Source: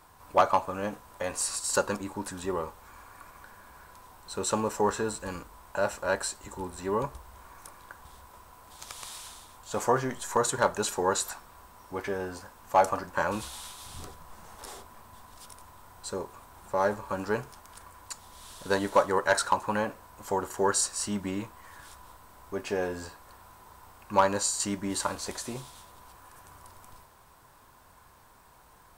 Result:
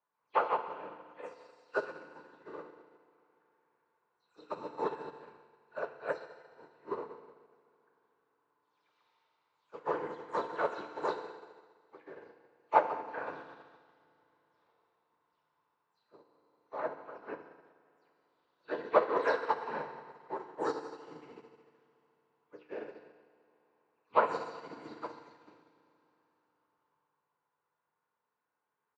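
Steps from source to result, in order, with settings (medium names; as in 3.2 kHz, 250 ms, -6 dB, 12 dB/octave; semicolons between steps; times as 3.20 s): delay that grows with frequency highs early, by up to 154 ms; in parallel at -7 dB: hard clipper -21 dBFS, distortion -11 dB; on the sum: whisper effect; cabinet simulation 260–3500 Hz, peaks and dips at 270 Hz -6 dB, 400 Hz +4 dB, 720 Hz -3 dB, 3.2 kHz -4 dB; on a send: frequency-shifting echo 190 ms, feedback 62%, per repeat +95 Hz, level -16 dB; on the sum: FDN reverb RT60 3.4 s, high-frequency decay 0.95×, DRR -1.5 dB; upward expansion 2.5:1, over -34 dBFS; trim -4 dB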